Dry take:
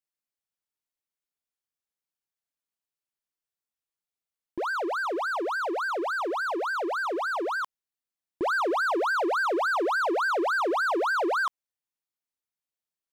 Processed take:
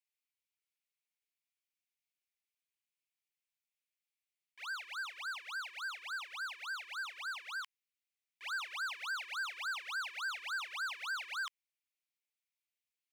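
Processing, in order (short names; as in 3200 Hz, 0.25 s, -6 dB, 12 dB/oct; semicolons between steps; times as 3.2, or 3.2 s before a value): ladder high-pass 2000 Hz, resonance 55%; soft clip -38 dBFS, distortion -19 dB; gain +6 dB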